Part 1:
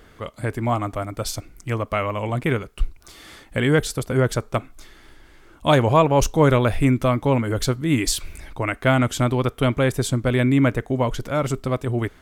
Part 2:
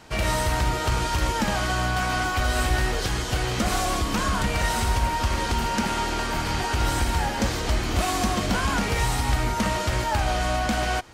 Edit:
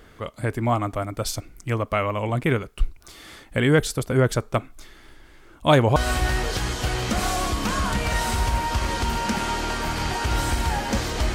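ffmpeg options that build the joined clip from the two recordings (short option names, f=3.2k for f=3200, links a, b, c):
-filter_complex "[0:a]apad=whole_dur=11.34,atrim=end=11.34,atrim=end=5.962[a];[1:a]atrim=start=2.448:end=7.83[b];[a][b]acrossfade=d=0.004:c1=hsin:c2=hsin"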